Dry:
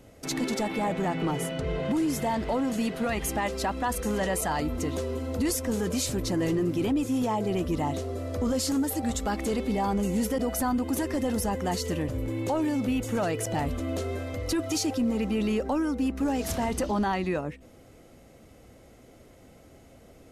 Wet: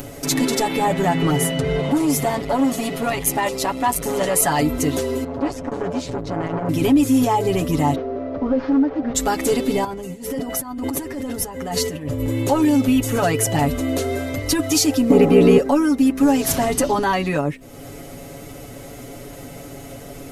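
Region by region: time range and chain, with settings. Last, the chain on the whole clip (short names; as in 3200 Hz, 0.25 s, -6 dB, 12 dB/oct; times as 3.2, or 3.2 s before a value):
1.8–4.36 notch 1600 Hz, Q 5.7 + core saturation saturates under 360 Hz
5.24–6.69 tape spacing loss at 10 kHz 27 dB + core saturation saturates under 520 Hz
7.95–9.15 CVSD 32 kbps + LPF 1200 Hz + bell 97 Hz -12.5 dB 1.2 oct
9.84–12.2 high shelf 4100 Hz -5.5 dB + negative-ratio compressor -32 dBFS + tremolo triangle 2.2 Hz, depth 70%
15.1–15.58 EQ curve 170 Hz 0 dB, 300 Hz +15 dB, 4900 Hz 0 dB + ring modulator 33 Hz
whole clip: upward compressor, threshold -36 dBFS; high shelf 10000 Hz +10.5 dB; comb 7.1 ms, depth 84%; gain +7 dB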